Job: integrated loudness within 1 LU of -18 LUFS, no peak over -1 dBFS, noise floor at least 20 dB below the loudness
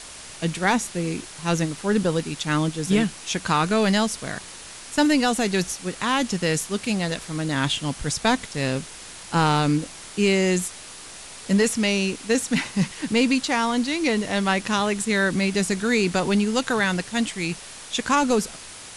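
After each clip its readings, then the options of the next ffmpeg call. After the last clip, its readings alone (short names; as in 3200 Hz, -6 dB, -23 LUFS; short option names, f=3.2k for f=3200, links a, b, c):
noise floor -41 dBFS; noise floor target -43 dBFS; loudness -23.0 LUFS; peak -8.0 dBFS; loudness target -18.0 LUFS
-> -af "afftdn=nr=6:nf=-41"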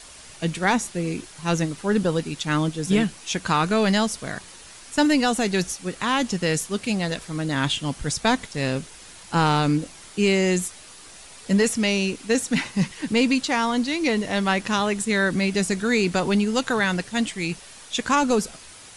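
noise floor -45 dBFS; loudness -23.0 LUFS; peak -8.0 dBFS; loudness target -18.0 LUFS
-> -af "volume=5dB"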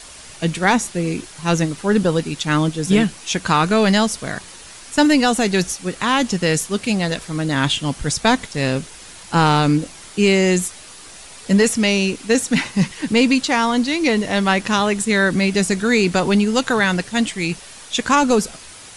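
loudness -18.0 LUFS; peak -3.0 dBFS; noise floor -40 dBFS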